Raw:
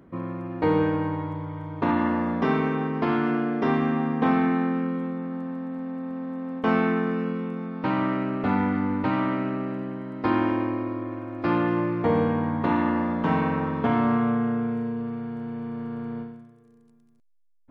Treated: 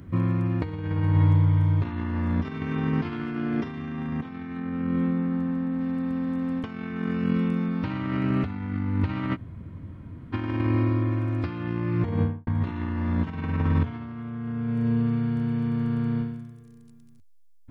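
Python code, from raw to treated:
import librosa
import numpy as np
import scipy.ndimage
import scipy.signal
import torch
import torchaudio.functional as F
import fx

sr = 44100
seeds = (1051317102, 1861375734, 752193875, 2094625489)

y = fx.high_shelf(x, sr, hz=3900.0, db=-10.5, at=(4.59, 5.81))
y = fx.studio_fade_out(y, sr, start_s=11.94, length_s=0.53)
y = fx.edit(y, sr, fx.room_tone_fill(start_s=9.34, length_s=1.01, crossfade_s=0.06), tone=tone)
y = fx.peak_eq(y, sr, hz=640.0, db=-13.5, octaves=2.7)
y = fx.over_compress(y, sr, threshold_db=-35.0, ratio=-0.5)
y = fx.peak_eq(y, sr, hz=86.0, db=13.5, octaves=0.72)
y = y * librosa.db_to_amplitude(7.5)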